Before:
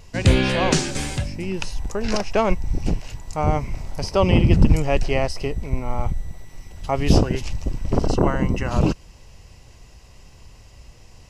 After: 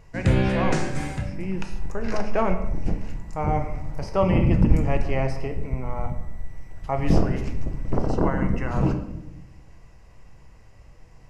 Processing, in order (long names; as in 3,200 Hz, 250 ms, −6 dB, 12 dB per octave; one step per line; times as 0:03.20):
high shelf with overshoot 2,500 Hz −7.5 dB, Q 1.5
on a send: convolution reverb RT60 0.90 s, pre-delay 6 ms, DRR 5 dB
on the sum: level −5 dB